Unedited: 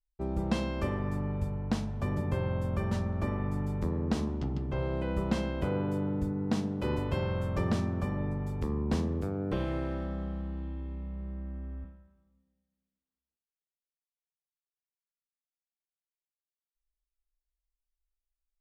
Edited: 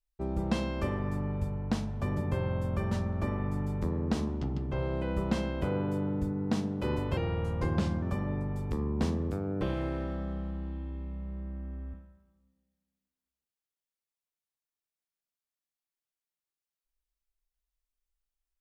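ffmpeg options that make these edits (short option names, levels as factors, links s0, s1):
-filter_complex "[0:a]asplit=3[s0][s1][s2];[s0]atrim=end=7.174[s3];[s1]atrim=start=7.17:end=7.93,asetpts=PTS-STARTPTS,asetrate=39249,aresample=44100,atrim=end_sample=37658,asetpts=PTS-STARTPTS[s4];[s2]atrim=start=7.926[s5];[s3][s4]acrossfade=d=0.004:c1=hsin:c2=hsin[s6];[s6][s5]acrossfade=d=0.004:c1=hsin:c2=hsin"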